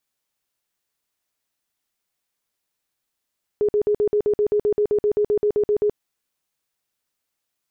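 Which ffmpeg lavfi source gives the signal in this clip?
ffmpeg -f lavfi -i "aevalsrc='0.168*sin(2*PI*417*mod(t,0.13))*lt(mod(t,0.13),32/417)':duration=2.34:sample_rate=44100" out.wav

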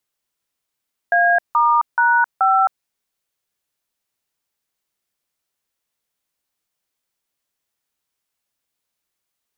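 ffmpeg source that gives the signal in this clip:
ffmpeg -f lavfi -i "aevalsrc='0.188*clip(min(mod(t,0.429),0.265-mod(t,0.429))/0.002,0,1)*(eq(floor(t/0.429),0)*(sin(2*PI*697*mod(t,0.429))+sin(2*PI*1633*mod(t,0.429)))+eq(floor(t/0.429),1)*(sin(2*PI*941*mod(t,0.429))+sin(2*PI*1209*mod(t,0.429)))+eq(floor(t/0.429),2)*(sin(2*PI*941*mod(t,0.429))+sin(2*PI*1477*mod(t,0.429)))+eq(floor(t/0.429),3)*(sin(2*PI*770*mod(t,0.429))+sin(2*PI*1336*mod(t,0.429))))':duration=1.716:sample_rate=44100" out.wav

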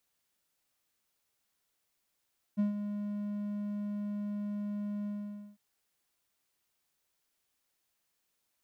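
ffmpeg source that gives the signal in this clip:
ffmpeg -f lavfi -i "aevalsrc='0.075*(1-4*abs(mod(206*t+0.25,1)-0.5))':duration=3.001:sample_rate=44100,afade=type=in:duration=0.026,afade=type=out:start_time=0.026:duration=0.131:silence=0.355,afade=type=out:start_time=2.49:duration=0.511" out.wav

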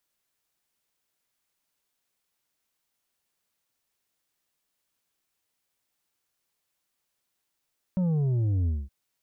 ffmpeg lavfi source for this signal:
ffmpeg -f lavfi -i "aevalsrc='0.0708*clip((0.92-t)/0.22,0,1)*tanh(2*sin(2*PI*190*0.92/log(65/190)*(exp(log(65/190)*t/0.92)-1)))/tanh(2)':duration=0.92:sample_rate=44100" out.wav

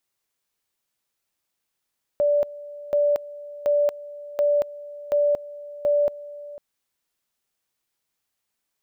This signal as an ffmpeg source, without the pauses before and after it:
ffmpeg -f lavfi -i "aevalsrc='pow(10,(-16.5-18.5*gte(mod(t,0.73),0.23))/20)*sin(2*PI*583*t)':duration=4.38:sample_rate=44100" out.wav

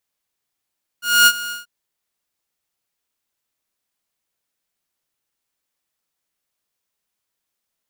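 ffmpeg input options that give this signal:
ffmpeg -f lavfi -i "aevalsrc='0.562*(2*mod(1430*t,1)-1)':duration=0.636:sample_rate=44100,afade=type=in:duration=0.246,afade=type=out:start_time=0.246:duration=0.054:silence=0.133,afade=type=out:start_time=0.49:duration=0.146" out.wav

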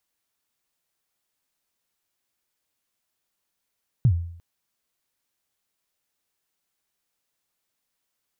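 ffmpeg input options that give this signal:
ffmpeg -f lavfi -i "aevalsrc='0.266*pow(10,-3*t/0.63)*sin(2*PI*(140*0.075/log(85/140)*(exp(log(85/140)*min(t,0.075)/0.075)-1)+85*max(t-0.075,0)))':duration=0.35:sample_rate=44100" out.wav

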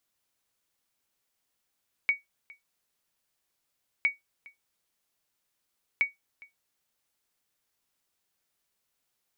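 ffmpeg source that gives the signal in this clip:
ffmpeg -f lavfi -i "aevalsrc='0.158*(sin(2*PI*2250*mod(t,1.96))*exp(-6.91*mod(t,1.96)/0.16)+0.0596*sin(2*PI*2250*max(mod(t,1.96)-0.41,0))*exp(-6.91*max(mod(t,1.96)-0.41,0)/0.16))':duration=5.88:sample_rate=44100" out.wav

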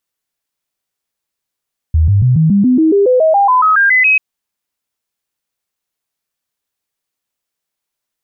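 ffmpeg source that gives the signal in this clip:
ffmpeg -f lavfi -i "aevalsrc='0.473*clip(min(mod(t,0.14),0.14-mod(t,0.14))/0.005,0,1)*sin(2*PI*79.5*pow(2,floor(t/0.14)/3)*mod(t,0.14))':duration=2.24:sample_rate=44100" out.wav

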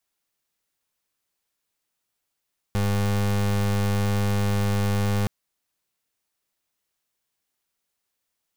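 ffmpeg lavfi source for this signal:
ffmpeg -f lavfi -i "aevalsrc='0.075*(2*lt(mod(101*t,1),0.31)-1)':duration=2.52:sample_rate=44100" out.wav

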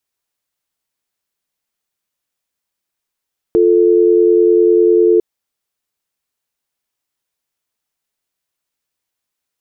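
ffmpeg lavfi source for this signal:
ffmpeg -f lavfi -i "aevalsrc='0.316*(sin(2*PI*350*t)+sin(2*PI*440*t))':duration=1.65:sample_rate=44100" out.wav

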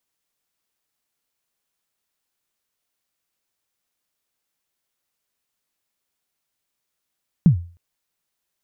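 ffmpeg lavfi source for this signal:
ffmpeg -f lavfi -i "aevalsrc='0.531*pow(10,-3*t/0.39)*sin(2*PI*(190*0.104/log(86/190)*(exp(log(86/190)*min(t,0.104)/0.104)-1)+86*max(t-0.104,0)))':duration=0.31:sample_rate=44100" out.wav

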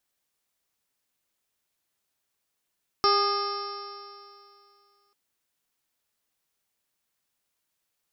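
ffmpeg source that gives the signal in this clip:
ffmpeg -f lavfi -i "aevalsrc='0.0631*pow(10,-3*t/2.47)*sin(2*PI*401.8*t)+0.0355*pow(10,-3*t/2.47)*sin(2*PI*808.39*t)+0.106*pow(10,-3*t/2.47)*sin(2*PI*1224.46*t)+0.0119*pow(10,-3*t/2.47)*sin(2*PI*1654.53*t)+0.0112*pow(10,-3*t/2.47)*sin(2*PI*2102.86*t)+0.00794*pow(10,-3*t/2.47)*sin(2*PI*2573.41*t)+0.00794*pow(10,-3*t/2.47)*sin(2*PI*3069.79*t)+0.00891*pow(10,-3*t/2.47)*sin(2*PI*3595.25*t)+0.0158*pow(10,-3*t/2.47)*sin(2*PI*4152.7*t)+0.0316*pow(10,-3*t/2.47)*sin(2*PI*4744.7*t)+0.0562*pow(10,-3*t/2.47)*sin(2*PI*5373.46*t)':duration=2.09:sample_rate=44100" out.wav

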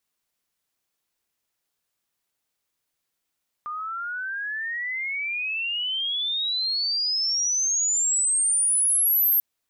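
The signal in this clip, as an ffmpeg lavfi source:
ffmpeg -f lavfi -i "aevalsrc='pow(10,(-29+12*t/5.74)/20)*sin(2*PI*1200*5.74/log(13000/1200)*(exp(log(13000/1200)*t/5.74)-1))':duration=5.74:sample_rate=44100" out.wav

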